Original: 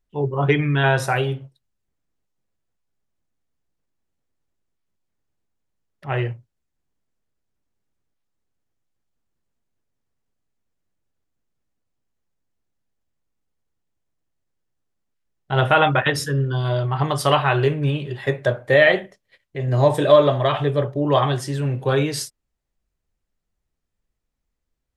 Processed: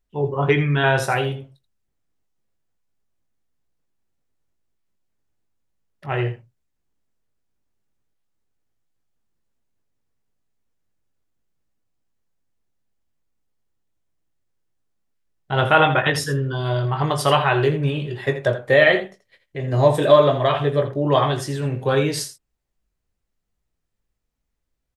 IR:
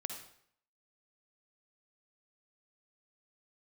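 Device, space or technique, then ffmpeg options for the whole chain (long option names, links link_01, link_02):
slapback doubling: -filter_complex "[0:a]asplit=3[link_01][link_02][link_03];[link_02]adelay=19,volume=-9dB[link_04];[link_03]adelay=82,volume=-12dB[link_05];[link_01][link_04][link_05]amix=inputs=3:normalize=0"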